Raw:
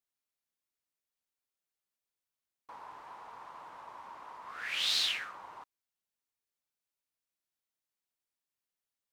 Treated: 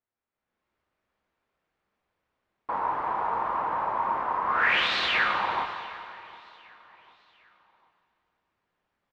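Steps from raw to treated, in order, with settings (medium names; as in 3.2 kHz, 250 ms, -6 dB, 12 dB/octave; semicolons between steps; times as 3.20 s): peak limiter -27 dBFS, peak gain reduction 7.5 dB; low-pass 1.6 kHz 12 dB/octave; feedback delay 751 ms, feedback 45%, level -23 dB; level rider gain up to 14 dB; on a send at -4 dB: reverberation RT60 2.6 s, pre-delay 7 ms; on the sum: trim +6 dB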